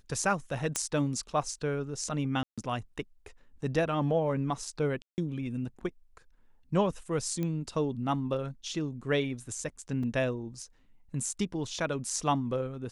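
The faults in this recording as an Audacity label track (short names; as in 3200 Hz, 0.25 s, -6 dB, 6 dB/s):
0.760000	0.760000	pop -13 dBFS
2.430000	2.580000	gap 0.146 s
5.020000	5.180000	gap 0.159 s
7.430000	7.430000	pop -21 dBFS
10.030000	10.030000	gap 4.2 ms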